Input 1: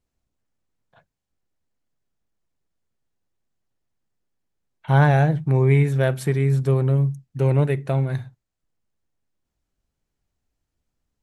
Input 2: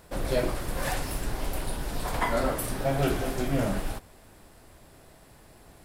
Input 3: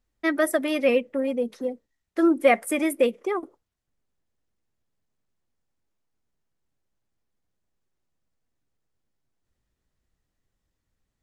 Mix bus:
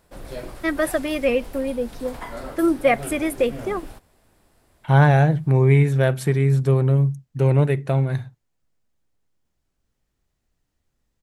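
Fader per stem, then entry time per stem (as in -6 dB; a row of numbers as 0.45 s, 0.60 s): +1.5 dB, -7.5 dB, +0.5 dB; 0.00 s, 0.00 s, 0.40 s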